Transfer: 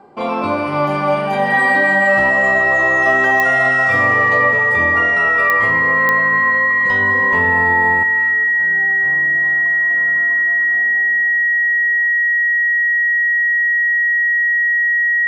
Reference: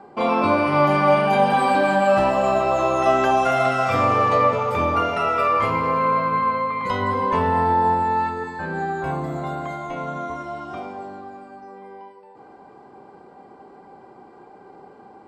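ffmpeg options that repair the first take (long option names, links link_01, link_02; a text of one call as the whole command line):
ffmpeg -i in.wav -af "adeclick=threshold=4,bandreject=frequency=1900:width=30,asetnsamples=nb_out_samples=441:pad=0,asendcmd='8.03 volume volume 9.5dB',volume=0dB" out.wav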